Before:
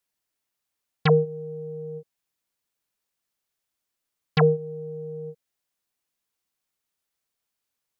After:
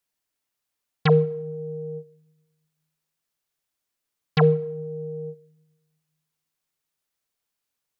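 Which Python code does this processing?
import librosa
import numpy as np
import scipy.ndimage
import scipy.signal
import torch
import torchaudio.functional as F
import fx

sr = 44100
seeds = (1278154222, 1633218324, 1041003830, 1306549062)

y = fx.room_shoebox(x, sr, seeds[0], volume_m3=3900.0, walls='furnished', distance_m=0.39)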